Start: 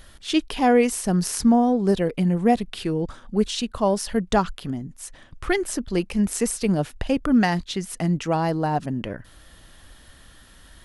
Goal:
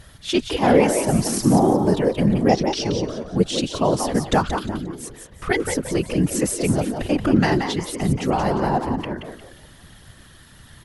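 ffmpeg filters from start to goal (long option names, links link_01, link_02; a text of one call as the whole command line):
ffmpeg -i in.wav -filter_complex "[0:a]asettb=1/sr,asplit=3[link_01][link_02][link_03];[link_01]atrim=end=2.494[link_04];[link_02]atrim=start=2.49:end=2.99,asetpts=PTS-STARTPTS,afade=type=in:duration=0.004:curve=qsin,afade=type=out:start_time=0.496:duration=0.004:curve=qsin,lowpass=frequency=5700:width_type=q:width=11[link_05];[link_03]atrim=start=2.986[link_06];[link_04][link_05]acrossfade=duration=0.004:curve1=hsin:curve2=qsin[link_07];[link_07][link_06]acrossfade=duration=0.004:curve1=qsin:curve2=hsin,asplit=5[link_08][link_09][link_10][link_11][link_12];[link_09]adelay=177,afreqshift=82,volume=-7dB[link_13];[link_10]adelay=354,afreqshift=164,volume=-17.2dB[link_14];[link_11]adelay=531,afreqshift=246,volume=-27.3dB[link_15];[link_12]adelay=708,afreqshift=328,volume=-37.5dB[link_16];[link_08][link_13][link_14][link_15][link_16]amix=inputs=5:normalize=0,afftfilt=real='hypot(re,im)*cos(2*PI*random(0))':imag='hypot(re,im)*sin(2*PI*random(1))':win_size=512:overlap=0.75,volume=7.5dB" out.wav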